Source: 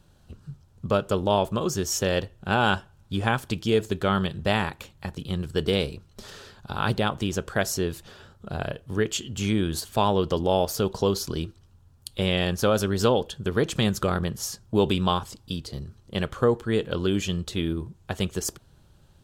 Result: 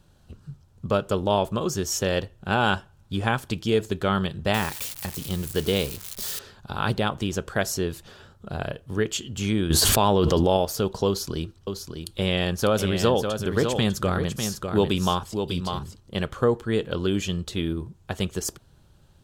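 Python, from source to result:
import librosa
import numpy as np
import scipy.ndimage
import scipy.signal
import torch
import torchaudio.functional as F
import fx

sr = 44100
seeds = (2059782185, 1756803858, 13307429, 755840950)

y = fx.crossing_spikes(x, sr, level_db=-23.5, at=(4.54, 6.39))
y = fx.env_flatten(y, sr, amount_pct=100, at=(9.7, 10.57))
y = fx.echo_single(y, sr, ms=599, db=-6.5, at=(11.07, 16.0))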